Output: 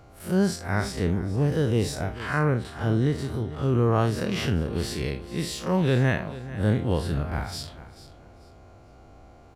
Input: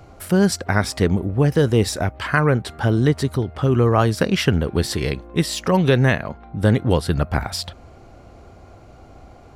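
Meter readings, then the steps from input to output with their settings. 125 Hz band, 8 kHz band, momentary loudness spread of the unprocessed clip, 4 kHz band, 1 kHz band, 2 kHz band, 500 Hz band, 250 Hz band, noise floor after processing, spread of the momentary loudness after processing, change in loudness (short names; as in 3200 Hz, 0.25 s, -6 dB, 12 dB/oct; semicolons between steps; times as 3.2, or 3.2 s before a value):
-5.5 dB, -8.5 dB, 7 LU, -8.0 dB, -7.0 dB, -7.5 dB, -7.0 dB, -6.0 dB, -51 dBFS, 9 LU, -6.5 dB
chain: time blur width 95 ms; feedback echo 0.439 s, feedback 26%, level -16 dB; gain -4.5 dB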